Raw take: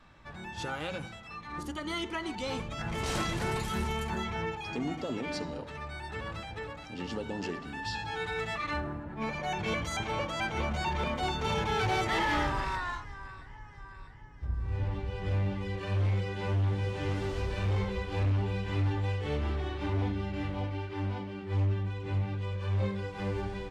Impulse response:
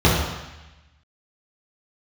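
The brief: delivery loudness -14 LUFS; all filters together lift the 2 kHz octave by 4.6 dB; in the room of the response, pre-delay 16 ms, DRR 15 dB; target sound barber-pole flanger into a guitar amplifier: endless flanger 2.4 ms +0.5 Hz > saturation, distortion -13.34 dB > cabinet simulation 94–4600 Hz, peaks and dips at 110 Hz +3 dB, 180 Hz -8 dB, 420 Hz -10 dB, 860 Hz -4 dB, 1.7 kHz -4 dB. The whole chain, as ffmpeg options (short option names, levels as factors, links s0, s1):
-filter_complex "[0:a]equalizer=f=2000:t=o:g=8,asplit=2[s0][s1];[1:a]atrim=start_sample=2205,adelay=16[s2];[s1][s2]afir=irnorm=-1:irlink=0,volume=0.0126[s3];[s0][s3]amix=inputs=2:normalize=0,asplit=2[s4][s5];[s5]adelay=2.4,afreqshift=0.5[s6];[s4][s6]amix=inputs=2:normalize=1,asoftclip=threshold=0.0398,highpass=94,equalizer=f=110:t=q:w=4:g=3,equalizer=f=180:t=q:w=4:g=-8,equalizer=f=420:t=q:w=4:g=-10,equalizer=f=860:t=q:w=4:g=-4,equalizer=f=1700:t=q:w=4:g=-4,lowpass=f=4600:w=0.5412,lowpass=f=4600:w=1.3066,volume=15.8"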